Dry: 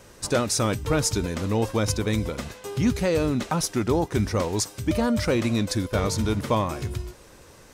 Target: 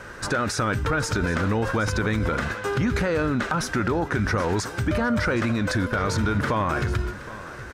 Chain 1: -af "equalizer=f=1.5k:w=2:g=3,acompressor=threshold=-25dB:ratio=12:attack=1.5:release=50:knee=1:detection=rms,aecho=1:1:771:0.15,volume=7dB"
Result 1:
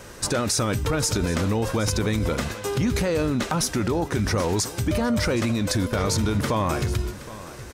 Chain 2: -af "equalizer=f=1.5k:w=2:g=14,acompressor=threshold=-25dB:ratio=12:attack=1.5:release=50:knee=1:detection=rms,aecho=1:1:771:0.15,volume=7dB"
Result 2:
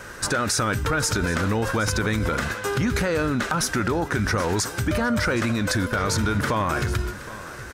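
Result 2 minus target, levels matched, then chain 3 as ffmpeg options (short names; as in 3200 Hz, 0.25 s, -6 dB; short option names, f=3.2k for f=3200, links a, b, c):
4000 Hz band +3.5 dB
-af "equalizer=f=1.5k:w=2:g=14,acompressor=threshold=-25dB:ratio=12:attack=1.5:release=50:knee=1:detection=rms,lowpass=f=3.1k:p=1,aecho=1:1:771:0.15,volume=7dB"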